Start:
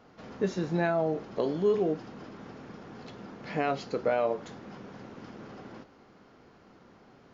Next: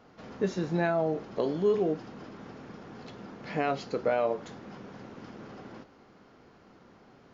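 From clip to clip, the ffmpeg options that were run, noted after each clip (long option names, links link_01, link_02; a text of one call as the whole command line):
ffmpeg -i in.wav -af anull out.wav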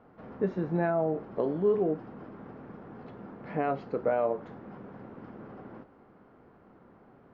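ffmpeg -i in.wav -af "lowpass=1500" out.wav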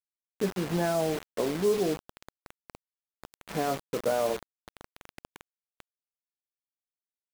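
ffmpeg -i in.wav -af "acrusher=bits=5:mix=0:aa=0.000001" out.wav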